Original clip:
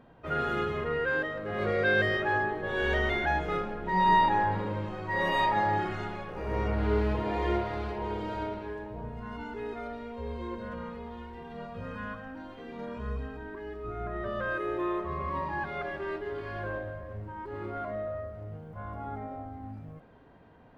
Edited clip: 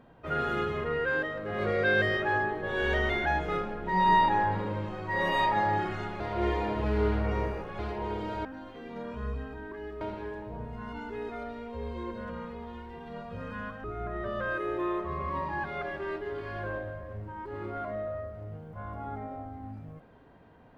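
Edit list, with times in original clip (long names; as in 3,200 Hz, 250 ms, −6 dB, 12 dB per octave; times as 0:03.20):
0:06.20–0:07.79: reverse
0:12.28–0:13.84: move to 0:08.45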